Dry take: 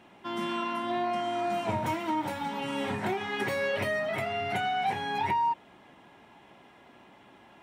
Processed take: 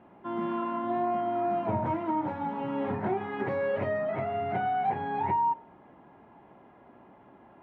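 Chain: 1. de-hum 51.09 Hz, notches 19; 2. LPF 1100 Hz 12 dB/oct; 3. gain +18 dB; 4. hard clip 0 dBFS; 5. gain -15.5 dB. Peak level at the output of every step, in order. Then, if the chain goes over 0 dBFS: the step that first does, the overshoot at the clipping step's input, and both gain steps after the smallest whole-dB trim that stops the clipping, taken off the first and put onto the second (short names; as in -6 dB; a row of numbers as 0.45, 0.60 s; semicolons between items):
-17.5, -19.5, -1.5, -1.5, -17.0 dBFS; no overload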